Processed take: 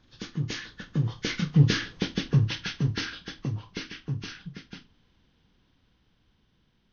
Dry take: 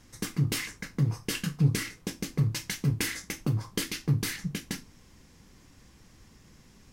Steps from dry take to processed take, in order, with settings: nonlinear frequency compression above 1100 Hz 1.5:1; Doppler pass-by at 1.94, 11 m/s, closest 5.7 m; gain +6.5 dB

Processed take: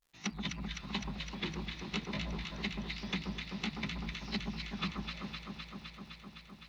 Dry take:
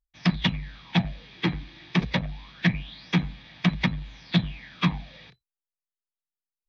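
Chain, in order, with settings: repeated pitch sweeps +3 st, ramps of 0.337 s; compressor 6:1, threshold -33 dBFS, peak gain reduction 16 dB; crackle 230/s -56 dBFS; on a send: echo with dull and thin repeats by turns 0.128 s, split 1300 Hz, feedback 89%, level -3.5 dB; on the sum: gain -3 dB

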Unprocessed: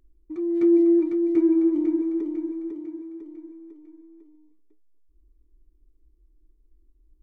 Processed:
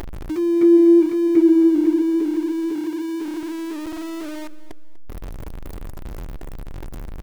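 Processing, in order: zero-crossing step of -37.5 dBFS; feedback echo 0.245 s, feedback 31%, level -18 dB; in parallel at -2 dB: upward compressor, threshold -22 dBFS

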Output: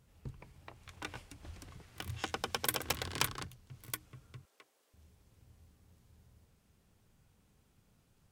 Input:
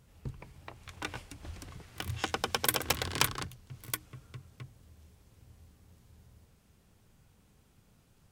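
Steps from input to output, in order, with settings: 4.45–4.94 HPF 390 Hz 24 dB/oct; gain -5 dB

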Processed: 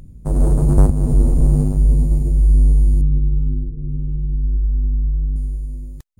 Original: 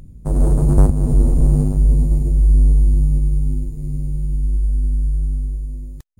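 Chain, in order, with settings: 3.01–5.36 steep low-pass 510 Hz 36 dB/oct

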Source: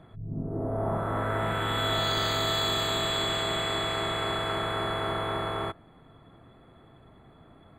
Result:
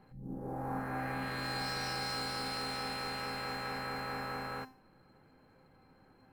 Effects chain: in parallel at -9.5 dB: sample-rate reducer 9700 Hz, jitter 20%; on the sum: varispeed +23%; resonator 260 Hz, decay 0.41 s, harmonics all, mix 80%

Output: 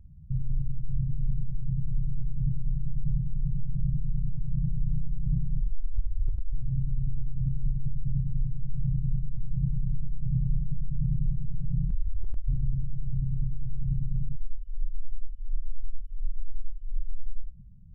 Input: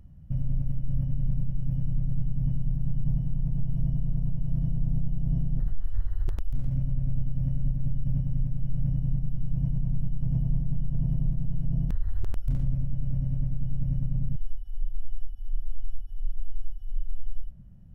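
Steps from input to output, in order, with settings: spectral contrast raised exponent 1.5; 5.87–6.44 dynamic EQ 140 Hz, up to +4 dB, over -45 dBFS, Q 0.84

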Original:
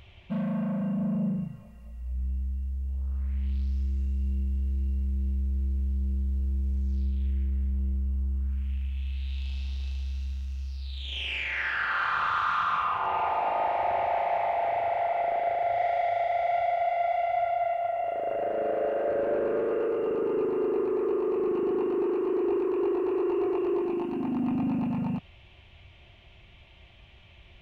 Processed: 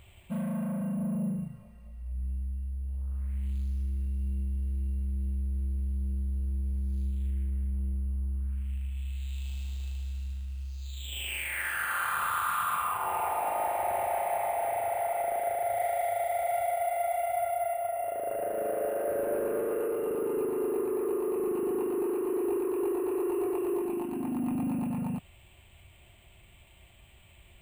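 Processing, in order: careless resampling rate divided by 4×, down filtered, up hold; gain -3 dB

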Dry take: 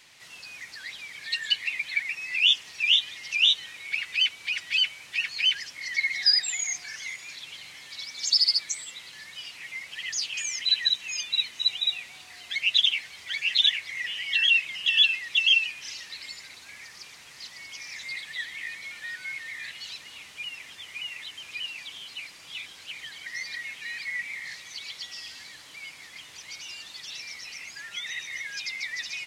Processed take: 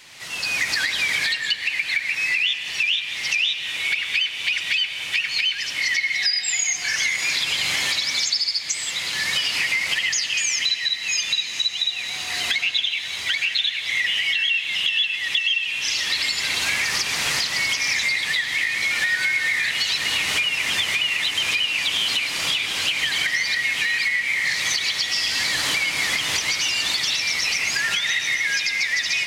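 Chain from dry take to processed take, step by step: recorder AGC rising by 24 dB/s; diffused feedback echo 1.184 s, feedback 49%, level -15 dB; compressor, threshold -27 dBFS, peak gain reduction 11.5 dB; on a send at -9 dB: reverb RT60 1.8 s, pre-delay 65 ms; on the sum: gain +7.5 dB

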